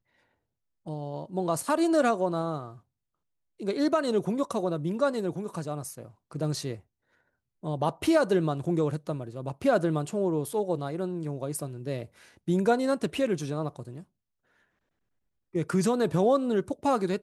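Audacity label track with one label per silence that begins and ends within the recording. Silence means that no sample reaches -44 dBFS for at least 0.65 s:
2.780000	3.600000	silence
6.800000	7.630000	silence
14.030000	15.540000	silence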